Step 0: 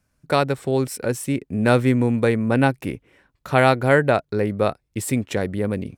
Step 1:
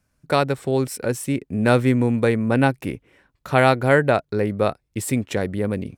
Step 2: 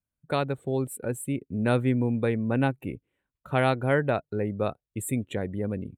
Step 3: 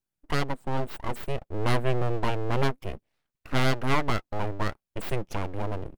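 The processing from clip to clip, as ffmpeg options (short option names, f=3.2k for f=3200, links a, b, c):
-af anull
-af "aexciter=amount=1.1:drive=3.1:freq=2.8k,lowshelf=f=370:g=4,afftdn=nr=15:nf=-35,volume=-9dB"
-af "aeval=exprs='abs(val(0))':c=same,volume=2dB"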